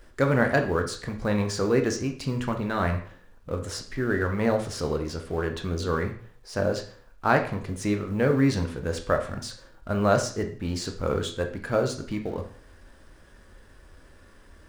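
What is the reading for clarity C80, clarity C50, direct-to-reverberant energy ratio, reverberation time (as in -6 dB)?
14.0 dB, 9.5 dB, 4.0 dB, 0.50 s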